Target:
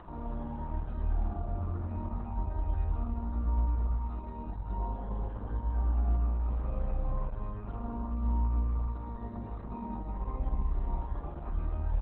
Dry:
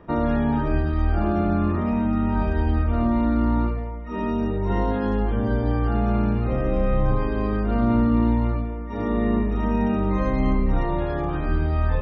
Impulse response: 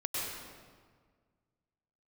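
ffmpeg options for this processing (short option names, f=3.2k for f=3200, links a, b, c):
-filter_complex "[0:a]aecho=1:1:862|1724|2586|3448:0.237|0.0996|0.0418|0.0176,acompressor=mode=upward:threshold=-22dB:ratio=2.5,equalizer=f=125:t=o:w=1:g=-10,equalizer=f=250:t=o:w=1:g=-9,equalizer=f=500:t=o:w=1:g=-9,equalizer=f=1k:t=o:w=1:g=6,equalizer=f=2k:t=o:w=1:g=-9,acrossover=split=490[a][b];[b]acompressor=threshold=-38dB:ratio=6[c];[a][c]amix=inputs=2:normalize=0,highshelf=f=2.4k:g=-5.5,asplit=2[d][e];[1:a]atrim=start_sample=2205,adelay=47[f];[e][f]afir=irnorm=-1:irlink=0,volume=-6dB[g];[d][g]amix=inputs=2:normalize=0,volume=-8.5dB" -ar 48000 -c:a libopus -b:a 8k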